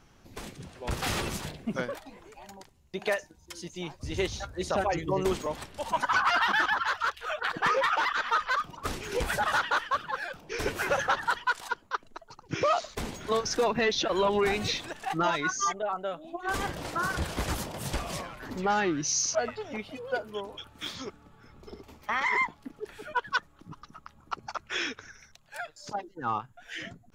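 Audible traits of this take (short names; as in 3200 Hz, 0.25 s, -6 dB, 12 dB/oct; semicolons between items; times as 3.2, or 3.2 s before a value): noise floor -59 dBFS; spectral tilt -3.0 dB/oct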